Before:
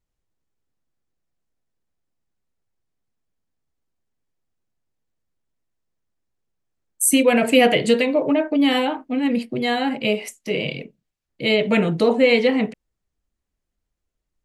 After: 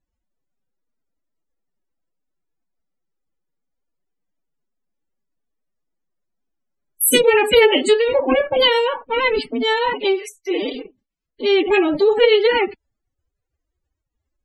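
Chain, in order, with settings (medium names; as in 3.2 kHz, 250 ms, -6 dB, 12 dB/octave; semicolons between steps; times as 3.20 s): formant-preserving pitch shift +10.5 st; loudest bins only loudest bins 64; trim +3 dB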